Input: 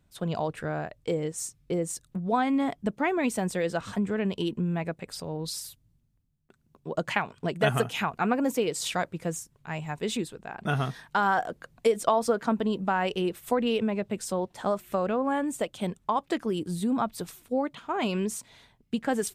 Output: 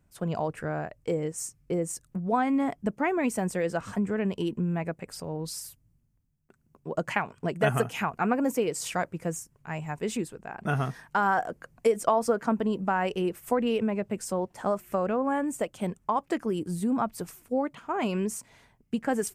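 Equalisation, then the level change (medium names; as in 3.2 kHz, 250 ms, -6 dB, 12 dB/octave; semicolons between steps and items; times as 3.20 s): peaking EQ 3.7 kHz -11 dB 0.55 oct; 0.0 dB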